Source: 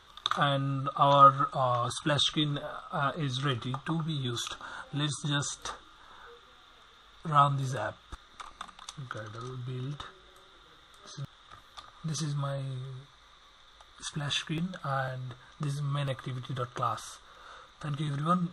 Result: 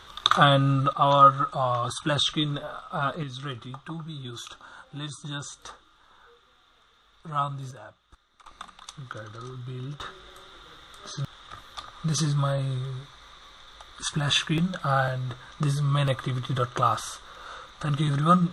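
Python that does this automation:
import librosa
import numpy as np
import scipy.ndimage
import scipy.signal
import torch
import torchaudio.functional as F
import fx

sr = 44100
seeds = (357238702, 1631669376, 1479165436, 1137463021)

y = fx.gain(x, sr, db=fx.steps((0.0, 9.0), (0.93, 2.5), (3.23, -4.5), (7.71, -11.0), (8.46, 1.0), (10.01, 8.0)))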